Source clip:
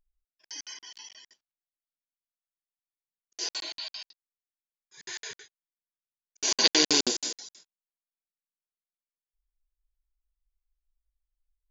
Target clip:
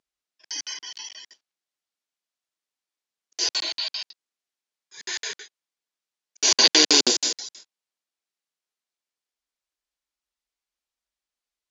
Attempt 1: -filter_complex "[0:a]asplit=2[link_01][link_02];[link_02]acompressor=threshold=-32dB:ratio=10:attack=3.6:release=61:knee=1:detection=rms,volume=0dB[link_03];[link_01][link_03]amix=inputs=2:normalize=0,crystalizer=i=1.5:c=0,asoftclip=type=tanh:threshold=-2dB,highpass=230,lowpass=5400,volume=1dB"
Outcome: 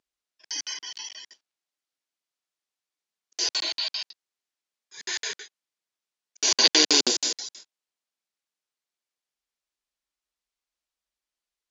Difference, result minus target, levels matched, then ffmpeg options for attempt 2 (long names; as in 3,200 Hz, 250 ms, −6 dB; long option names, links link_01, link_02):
downward compressor: peak gain reduction +11 dB
-filter_complex "[0:a]asplit=2[link_01][link_02];[link_02]acompressor=threshold=-20dB:ratio=10:attack=3.6:release=61:knee=1:detection=rms,volume=0dB[link_03];[link_01][link_03]amix=inputs=2:normalize=0,crystalizer=i=1.5:c=0,asoftclip=type=tanh:threshold=-2dB,highpass=230,lowpass=5400,volume=1dB"